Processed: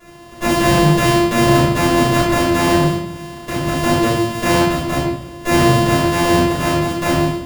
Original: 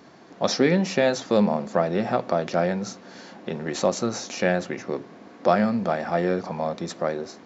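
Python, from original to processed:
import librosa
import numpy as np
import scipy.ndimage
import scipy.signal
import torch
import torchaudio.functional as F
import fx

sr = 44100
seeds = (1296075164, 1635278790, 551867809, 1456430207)

p1 = np.r_[np.sort(x[:len(x) // 128 * 128].reshape(-1, 128), axis=1).ravel(), x[len(x) // 128 * 128:]]
p2 = fx.over_compress(p1, sr, threshold_db=-23.0, ratio=-1.0)
p3 = p1 + F.gain(torch.from_numpy(p2), -1.0).numpy()
p4 = fx.room_shoebox(p3, sr, seeds[0], volume_m3=190.0, walls='mixed', distance_m=5.7)
y = F.gain(torch.from_numpy(p4), -11.0).numpy()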